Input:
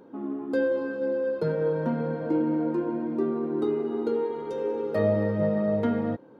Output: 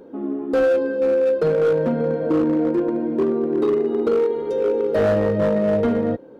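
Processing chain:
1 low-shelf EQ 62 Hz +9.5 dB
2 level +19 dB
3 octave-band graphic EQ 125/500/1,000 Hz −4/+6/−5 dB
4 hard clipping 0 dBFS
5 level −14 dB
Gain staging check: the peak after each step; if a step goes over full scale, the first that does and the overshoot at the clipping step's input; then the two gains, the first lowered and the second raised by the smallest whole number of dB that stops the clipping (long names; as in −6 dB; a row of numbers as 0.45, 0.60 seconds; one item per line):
−11.5, +7.5, +9.0, 0.0, −14.0 dBFS
step 2, 9.0 dB
step 2 +10 dB, step 5 −5 dB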